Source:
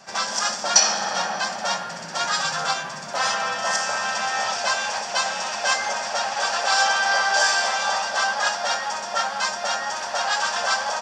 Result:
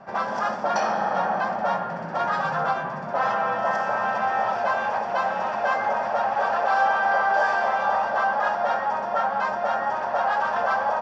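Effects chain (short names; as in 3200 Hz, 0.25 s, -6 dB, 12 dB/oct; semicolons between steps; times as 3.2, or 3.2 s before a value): LPF 1100 Hz 12 dB/oct; in parallel at 0 dB: limiter -22.5 dBFS, peak gain reduction 10 dB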